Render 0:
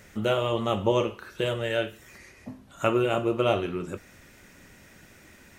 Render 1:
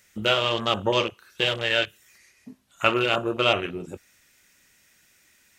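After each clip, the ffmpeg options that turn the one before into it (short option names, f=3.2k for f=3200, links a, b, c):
-af "tiltshelf=f=1.5k:g=-9,afwtdn=0.0178,volume=6.5dB"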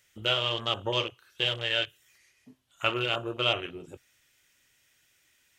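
-af "equalizer=f=125:t=o:w=0.33:g=6,equalizer=f=200:t=o:w=0.33:g=-11,equalizer=f=3.15k:t=o:w=0.33:g=7,volume=-7.5dB"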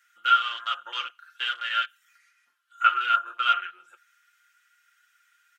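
-af "highpass=f=1.4k:t=q:w=14,aecho=1:1:5.7:0.69,volume=-6.5dB"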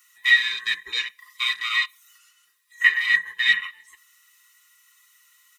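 -af "afftfilt=real='real(if(lt(b,1008),b+24*(1-2*mod(floor(b/24),2)),b),0)':imag='imag(if(lt(b,1008),b+24*(1-2*mod(floor(b/24),2)),b),0)':win_size=2048:overlap=0.75,crystalizer=i=10:c=0,volume=-7dB"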